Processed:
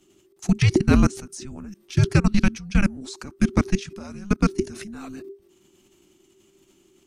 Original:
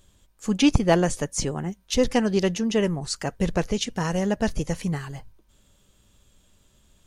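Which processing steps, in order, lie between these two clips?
level quantiser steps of 22 dB; frequency shift -400 Hz; gain +7.5 dB

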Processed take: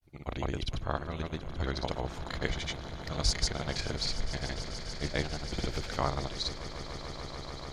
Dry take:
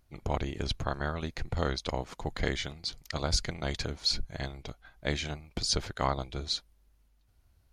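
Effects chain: grains, pitch spread up and down by 0 st; swelling echo 0.146 s, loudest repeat 8, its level -17 dB

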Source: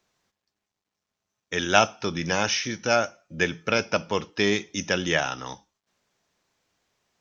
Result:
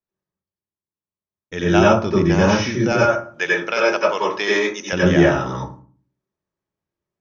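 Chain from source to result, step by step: 2.92–4.93 HPF 700 Hz 12 dB/oct; gate with hold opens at -51 dBFS; tilt -2 dB/oct; vocal rider within 3 dB 0.5 s; reverb RT60 0.45 s, pre-delay 87 ms, DRR -5.5 dB; gain +1 dB

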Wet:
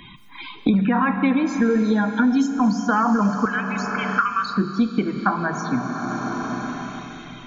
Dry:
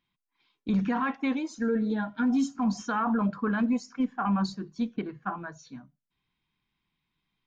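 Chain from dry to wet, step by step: 3.45–4.57 elliptic high-pass 1200 Hz, stop band 40 dB; loudest bins only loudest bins 64; in parallel at -3 dB: level quantiser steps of 11 dB; on the sum: Schroeder reverb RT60 3 s, combs from 32 ms, DRR 9 dB; three-band squash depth 100%; gain +6 dB

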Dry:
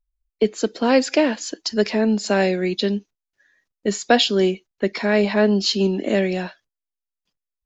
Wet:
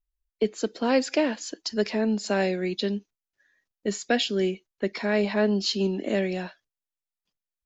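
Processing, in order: 4.05–4.53 ten-band EQ 1000 Hz -10 dB, 2000 Hz +4 dB, 4000 Hz -4 dB; gain -6 dB

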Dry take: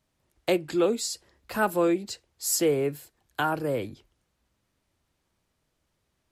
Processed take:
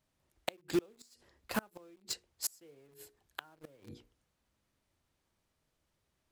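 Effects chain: notches 60/120/180/240/300/360/420/480 Hz; in parallel at -4 dB: bit-crush 5-bit; on the sum: flipped gate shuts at -16 dBFS, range -34 dB; gain -4.5 dB

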